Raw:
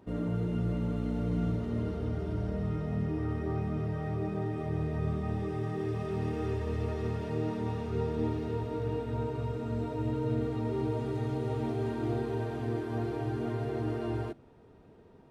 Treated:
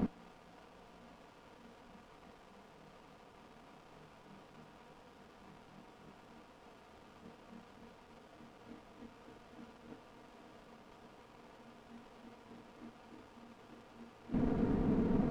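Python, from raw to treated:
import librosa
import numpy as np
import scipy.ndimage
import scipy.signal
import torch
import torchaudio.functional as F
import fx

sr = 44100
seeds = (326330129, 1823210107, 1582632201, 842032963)

y = fx.formant_shift(x, sr, semitones=-5)
y = fx.low_shelf(y, sr, hz=320.0, db=10.5)
y = fx.over_compress(y, sr, threshold_db=-43.0, ratio=-0.5)
y = fx.quant_dither(y, sr, seeds[0], bits=8, dither='triangular')
y = scipy.signal.sosfilt(scipy.signal.butter(2, 1700.0, 'lowpass', fs=sr, output='sos'), y)
y = fx.peak_eq(y, sr, hz=70.0, db=-13.5, octaves=1.4)
y = y + 0.54 * np.pad(y, (int(4.2 * sr / 1000.0), 0))[:len(y)]
y = fx.running_max(y, sr, window=17)
y = y * 10.0 ** (1.0 / 20.0)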